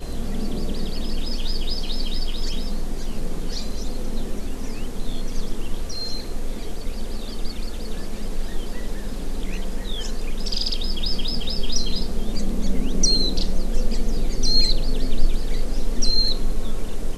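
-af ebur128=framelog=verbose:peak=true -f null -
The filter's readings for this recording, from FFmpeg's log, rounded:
Integrated loudness:
  I:         -27.5 LUFS
  Threshold: -37.5 LUFS
Loudness range:
  LRA:         9.2 LU
  Threshold: -47.7 LUFS
  LRA low:   -32.8 LUFS
  LRA high:  -23.6 LUFS
True peak:
  Peak:       -3.8 dBFS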